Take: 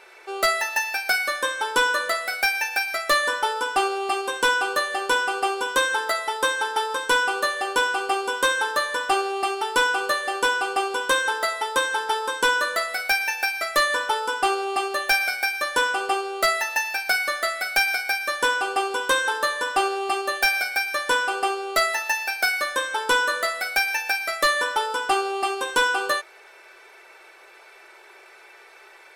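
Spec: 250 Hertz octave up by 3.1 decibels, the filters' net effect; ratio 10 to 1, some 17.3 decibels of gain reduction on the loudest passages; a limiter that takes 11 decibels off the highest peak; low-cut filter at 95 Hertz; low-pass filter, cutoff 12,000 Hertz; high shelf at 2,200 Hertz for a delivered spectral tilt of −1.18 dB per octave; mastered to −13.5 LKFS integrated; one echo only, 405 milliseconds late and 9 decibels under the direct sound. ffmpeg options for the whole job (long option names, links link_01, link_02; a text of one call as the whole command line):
ffmpeg -i in.wav -af "highpass=95,lowpass=12000,equalizer=frequency=250:width_type=o:gain=6,highshelf=frequency=2200:gain=-8,acompressor=threshold=-36dB:ratio=10,alimiter=level_in=10.5dB:limit=-24dB:level=0:latency=1,volume=-10.5dB,aecho=1:1:405:0.355,volume=28.5dB" out.wav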